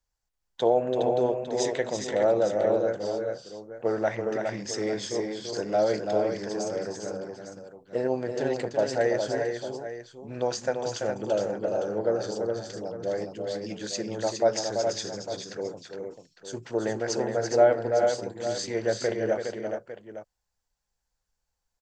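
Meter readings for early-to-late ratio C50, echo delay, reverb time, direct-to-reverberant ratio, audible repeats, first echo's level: no reverb, 335 ms, no reverb, no reverb, 3, -6.5 dB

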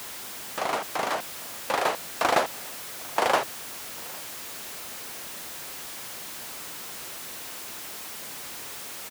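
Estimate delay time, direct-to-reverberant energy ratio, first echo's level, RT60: 800 ms, no reverb, -24.0 dB, no reverb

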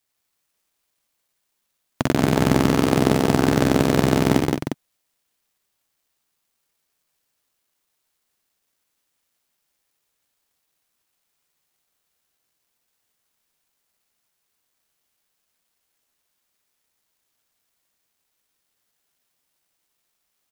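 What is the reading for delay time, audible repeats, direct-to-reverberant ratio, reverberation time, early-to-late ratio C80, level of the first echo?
61 ms, 3, no reverb, no reverb, no reverb, -6.5 dB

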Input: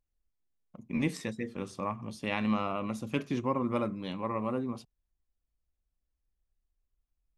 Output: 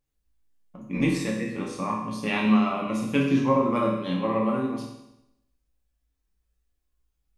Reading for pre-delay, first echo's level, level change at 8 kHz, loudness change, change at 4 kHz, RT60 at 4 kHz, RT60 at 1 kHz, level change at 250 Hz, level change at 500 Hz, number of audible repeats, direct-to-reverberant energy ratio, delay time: 7 ms, no echo, no reading, +8.0 dB, +7.0 dB, 0.85 s, 0.85 s, +9.0 dB, +8.0 dB, no echo, -3.0 dB, no echo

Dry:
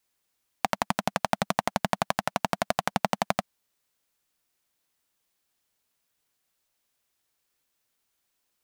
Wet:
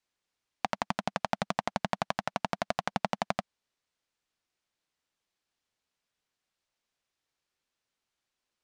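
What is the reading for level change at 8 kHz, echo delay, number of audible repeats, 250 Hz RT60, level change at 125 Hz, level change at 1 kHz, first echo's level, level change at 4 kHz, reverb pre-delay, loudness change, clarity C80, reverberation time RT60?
-9.5 dB, no echo, no echo, no reverb, -4.5 dB, -4.5 dB, no echo, -5.0 dB, no reverb, -4.5 dB, no reverb, no reverb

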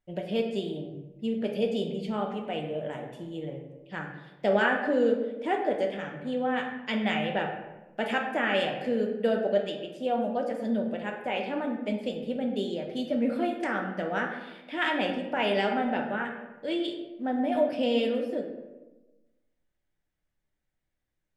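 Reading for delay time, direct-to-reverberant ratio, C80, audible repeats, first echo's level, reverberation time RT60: no echo, 1.0 dB, 7.5 dB, no echo, no echo, 1.1 s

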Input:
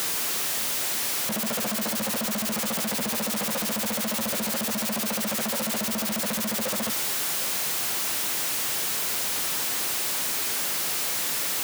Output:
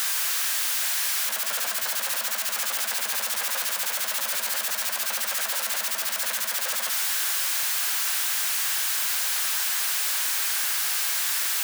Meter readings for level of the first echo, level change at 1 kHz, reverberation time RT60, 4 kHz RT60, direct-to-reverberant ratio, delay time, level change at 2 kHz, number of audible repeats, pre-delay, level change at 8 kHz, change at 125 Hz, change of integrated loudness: no echo, -0.5 dB, 1.8 s, 1.6 s, 10.0 dB, no echo, +3.0 dB, no echo, 7 ms, +2.0 dB, under -25 dB, +1.5 dB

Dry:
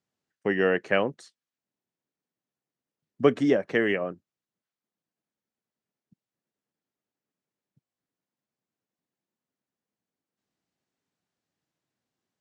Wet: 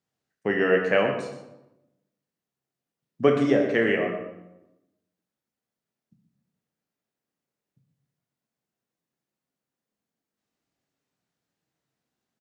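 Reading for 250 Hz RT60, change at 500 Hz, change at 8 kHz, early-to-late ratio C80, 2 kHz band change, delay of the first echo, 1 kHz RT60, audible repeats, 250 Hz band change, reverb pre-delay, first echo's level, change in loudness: 1.1 s, +2.5 dB, no reading, 6.5 dB, +2.5 dB, 123 ms, 0.90 s, 1, +1.5 dB, 13 ms, -11.0 dB, +2.0 dB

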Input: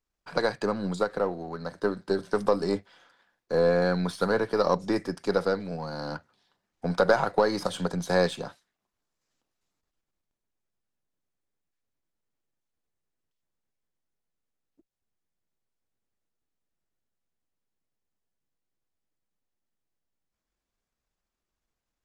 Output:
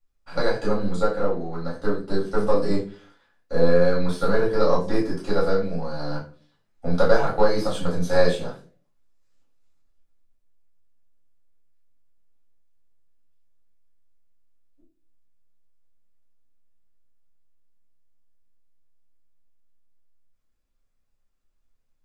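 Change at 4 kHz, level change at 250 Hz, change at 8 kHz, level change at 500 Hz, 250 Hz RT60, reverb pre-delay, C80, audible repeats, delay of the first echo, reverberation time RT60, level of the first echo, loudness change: +1.5 dB, +3.5 dB, +0.5 dB, +4.0 dB, 0.55 s, 4 ms, 13.0 dB, no echo, no echo, 0.40 s, no echo, +3.5 dB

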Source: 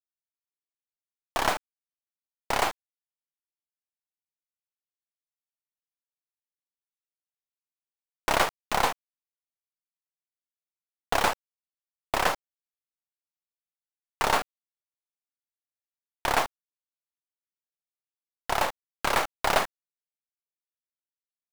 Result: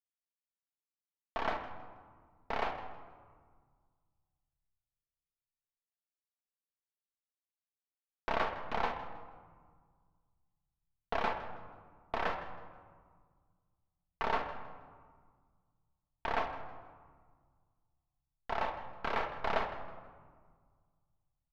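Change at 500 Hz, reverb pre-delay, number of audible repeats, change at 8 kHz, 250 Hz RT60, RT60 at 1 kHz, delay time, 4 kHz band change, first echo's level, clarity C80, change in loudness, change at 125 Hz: -7.5 dB, 4 ms, 2, under -25 dB, 2.3 s, 1.7 s, 160 ms, -14.5 dB, -15.5 dB, 9.5 dB, -10.0 dB, -7.5 dB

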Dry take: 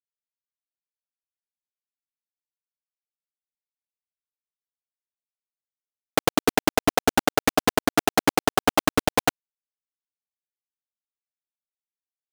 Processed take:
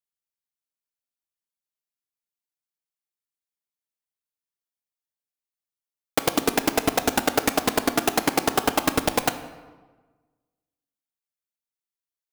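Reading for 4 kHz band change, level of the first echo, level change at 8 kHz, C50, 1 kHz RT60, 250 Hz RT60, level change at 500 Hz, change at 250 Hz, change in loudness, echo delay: -0.5 dB, no echo, +1.0 dB, 12.0 dB, 1.3 s, 1.5 s, -1.5 dB, -1.5 dB, -1.0 dB, no echo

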